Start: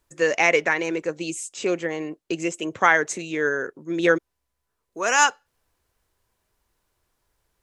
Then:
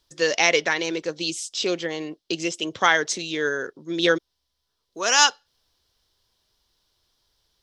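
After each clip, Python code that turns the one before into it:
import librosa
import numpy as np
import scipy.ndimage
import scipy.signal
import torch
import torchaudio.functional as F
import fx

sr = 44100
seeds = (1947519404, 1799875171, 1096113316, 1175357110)

y = fx.band_shelf(x, sr, hz=4200.0, db=14.0, octaves=1.1)
y = y * 10.0 ** (-1.5 / 20.0)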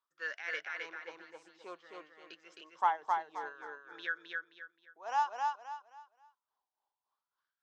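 y = x * (1.0 - 0.72 / 2.0 + 0.72 / 2.0 * np.cos(2.0 * np.pi * 3.5 * (np.arange(len(x)) / sr)))
y = fx.wah_lfo(y, sr, hz=0.56, low_hz=790.0, high_hz=1600.0, q=8.1)
y = fx.echo_feedback(y, sr, ms=264, feedback_pct=31, wet_db=-3)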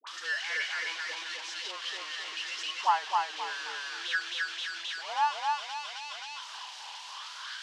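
y = x + 0.5 * 10.0 ** (-24.5 / 20.0) * np.diff(np.sign(x), prepend=np.sign(x[:1]))
y = fx.cabinet(y, sr, low_hz=270.0, low_slope=24, high_hz=5100.0, hz=(350.0, 510.0, 990.0, 1700.0, 3000.0), db=(-5, -4, 4, 4, 6))
y = fx.dispersion(y, sr, late='highs', ms=71.0, hz=820.0)
y = y * 10.0 ** (1.5 / 20.0)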